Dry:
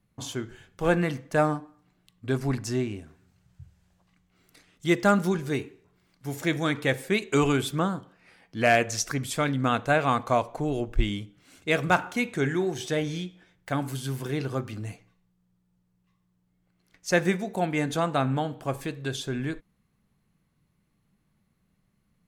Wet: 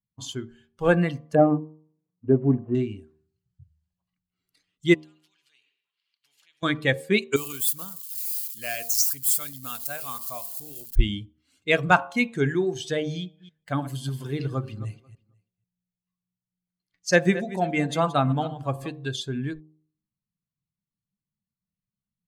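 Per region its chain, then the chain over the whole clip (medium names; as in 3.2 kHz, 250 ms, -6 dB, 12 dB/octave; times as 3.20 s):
1.35–2.75 s: CVSD coder 16 kbps + band-pass filter 470 Hz, Q 0.75 + bass shelf 480 Hz +9.5 dB
4.94–6.63 s: compression 4:1, threshold -38 dBFS + band-pass filter 2.8 kHz, Q 3.3 + spectrum-flattening compressor 2:1
7.36–10.96 s: zero-crossing glitches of -23.5 dBFS + pre-emphasis filter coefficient 0.8
13.19–18.91 s: chunks repeated in reverse 151 ms, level -10 dB + delay 489 ms -21 dB
whole clip: expander on every frequency bin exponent 1.5; de-hum 77.41 Hz, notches 15; trim +6 dB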